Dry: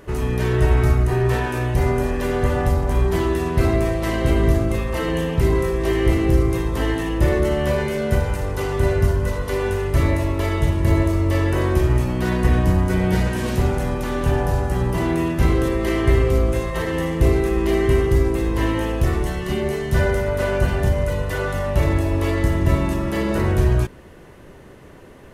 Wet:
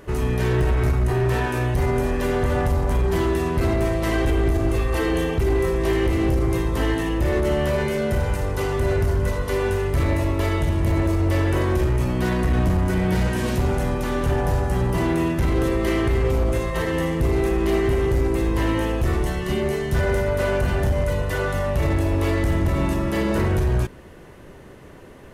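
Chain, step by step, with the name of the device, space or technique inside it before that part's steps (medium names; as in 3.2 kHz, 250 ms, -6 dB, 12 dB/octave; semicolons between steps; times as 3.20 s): 4.12–5.65 s: comb 2.6 ms, depth 57%; limiter into clipper (peak limiter -10.5 dBFS, peak gain reduction 7 dB; hard clipper -15 dBFS, distortion -17 dB)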